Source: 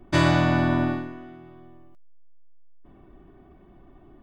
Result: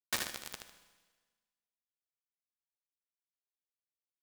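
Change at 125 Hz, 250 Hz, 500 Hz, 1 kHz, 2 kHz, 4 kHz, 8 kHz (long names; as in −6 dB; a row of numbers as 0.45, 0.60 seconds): −37.5 dB, −34.0 dB, −26.0 dB, −22.5 dB, −16.0 dB, −8.5 dB, can't be measured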